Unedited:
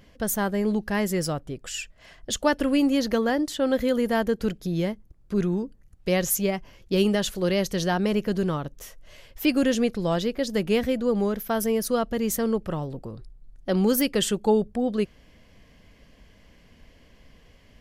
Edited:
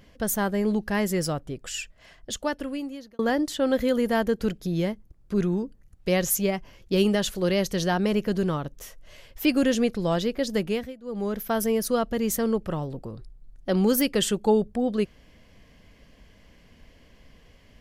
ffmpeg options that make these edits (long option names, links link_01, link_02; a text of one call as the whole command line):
ffmpeg -i in.wav -filter_complex "[0:a]asplit=4[link_01][link_02][link_03][link_04];[link_01]atrim=end=3.19,asetpts=PTS-STARTPTS,afade=type=out:start_time=1.78:duration=1.41[link_05];[link_02]atrim=start=3.19:end=10.96,asetpts=PTS-STARTPTS,afade=type=in:duration=0.004:curve=hsin,afade=type=out:start_time=7.37:duration=0.4:silence=0.0891251[link_06];[link_03]atrim=start=10.96:end=11.01,asetpts=PTS-STARTPTS,volume=-21dB[link_07];[link_04]atrim=start=11.01,asetpts=PTS-STARTPTS,afade=type=in:duration=0.4:silence=0.0891251[link_08];[link_05][link_06][link_07][link_08]concat=n=4:v=0:a=1" out.wav